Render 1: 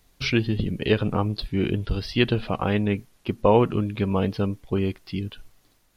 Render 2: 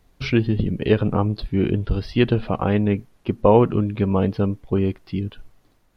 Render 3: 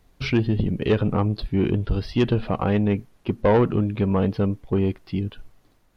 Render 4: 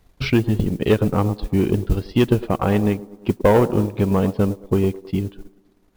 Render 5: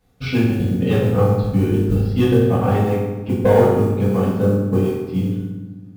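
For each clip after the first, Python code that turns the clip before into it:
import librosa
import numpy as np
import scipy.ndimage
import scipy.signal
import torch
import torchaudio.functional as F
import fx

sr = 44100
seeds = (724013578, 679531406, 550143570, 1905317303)

y1 = fx.high_shelf(x, sr, hz=2300.0, db=-11.5)
y1 = y1 * librosa.db_to_amplitude(4.0)
y2 = 10.0 ** (-11.0 / 20.0) * np.tanh(y1 / 10.0 ** (-11.0 / 20.0))
y3 = fx.echo_wet_bandpass(y2, sr, ms=106, feedback_pct=54, hz=510.0, wet_db=-8.0)
y3 = fx.transient(y3, sr, attack_db=3, sustain_db=-9)
y3 = fx.mod_noise(y3, sr, seeds[0], snr_db=28)
y3 = y3 * librosa.db_to_amplitude(2.0)
y4 = fx.rev_fdn(y3, sr, rt60_s=1.2, lf_ratio=1.6, hf_ratio=0.7, size_ms=12.0, drr_db=-9.5)
y4 = y4 * librosa.db_to_amplitude(-9.5)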